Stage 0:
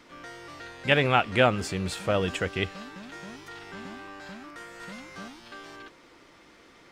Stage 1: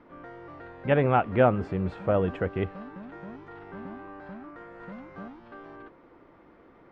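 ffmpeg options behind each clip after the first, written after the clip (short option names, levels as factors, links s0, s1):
-af "lowpass=1100,volume=1.26"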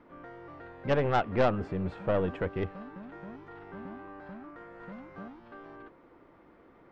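-af "aeval=exprs='0.398*(cos(1*acos(clip(val(0)/0.398,-1,1)))-cos(1*PI/2))+0.0708*(cos(4*acos(clip(val(0)/0.398,-1,1)))-cos(4*PI/2))+0.0447*(cos(5*acos(clip(val(0)/0.398,-1,1)))-cos(5*PI/2))+0.00891*(cos(8*acos(clip(val(0)/0.398,-1,1)))-cos(8*PI/2))':c=same,volume=0.473"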